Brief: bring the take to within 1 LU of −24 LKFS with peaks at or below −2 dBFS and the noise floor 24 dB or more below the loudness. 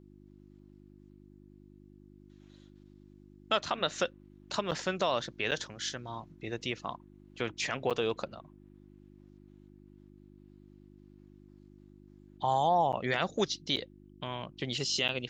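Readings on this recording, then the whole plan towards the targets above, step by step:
number of dropouts 6; longest dropout 7.4 ms; mains hum 50 Hz; hum harmonics up to 350 Hz; level of the hum −53 dBFS; integrated loudness −33.0 LKFS; sample peak −14.0 dBFS; target loudness −24.0 LKFS
→ repair the gap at 0:04.71/0:05.51/0:07.90/0:12.92/0:13.76/0:15.08, 7.4 ms
hum removal 50 Hz, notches 7
level +9 dB

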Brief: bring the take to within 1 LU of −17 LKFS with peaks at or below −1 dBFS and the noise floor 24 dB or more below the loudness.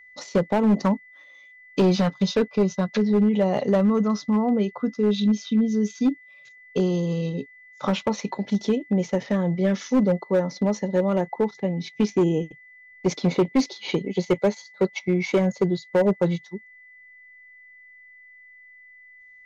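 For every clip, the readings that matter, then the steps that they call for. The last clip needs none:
share of clipped samples 1.8%; peaks flattened at −14.0 dBFS; interfering tone 2,000 Hz; level of the tone −47 dBFS; integrated loudness −23.5 LKFS; sample peak −14.0 dBFS; target loudness −17.0 LKFS
→ clipped peaks rebuilt −14 dBFS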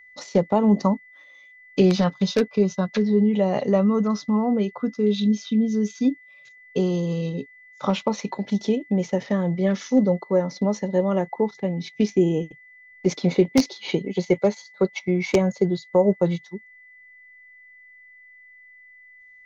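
share of clipped samples 0.0%; interfering tone 2,000 Hz; level of the tone −47 dBFS
→ notch filter 2,000 Hz, Q 30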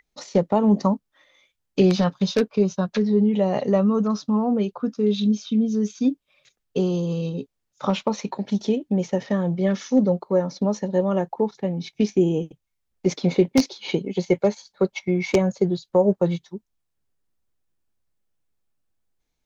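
interfering tone none found; integrated loudness −23.0 LKFS; sample peak −5.0 dBFS; target loudness −17.0 LKFS
→ level +6 dB
brickwall limiter −1 dBFS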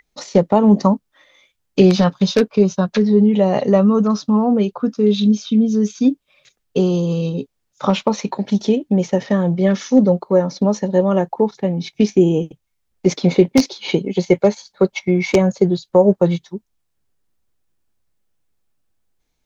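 integrated loudness −17.0 LKFS; sample peak −1.0 dBFS; background noise floor −71 dBFS

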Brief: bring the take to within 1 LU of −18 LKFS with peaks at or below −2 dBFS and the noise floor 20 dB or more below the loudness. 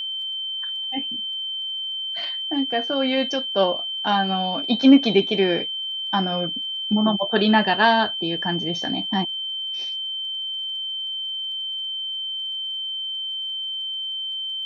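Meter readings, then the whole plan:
crackle rate 26 per second; interfering tone 3,100 Hz; level of the tone −26 dBFS; integrated loudness −22.5 LKFS; sample peak −3.0 dBFS; target loudness −18.0 LKFS
→ click removal
notch filter 3,100 Hz, Q 30
level +4.5 dB
brickwall limiter −2 dBFS

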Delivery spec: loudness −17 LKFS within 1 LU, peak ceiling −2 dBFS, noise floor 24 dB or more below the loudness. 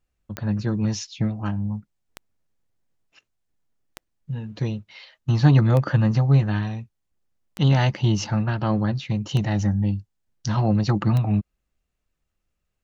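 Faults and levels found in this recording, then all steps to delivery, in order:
number of clicks 7; integrated loudness −22.5 LKFS; sample peak −5.5 dBFS; target loudness −17.0 LKFS
→ click removal
level +5.5 dB
brickwall limiter −2 dBFS

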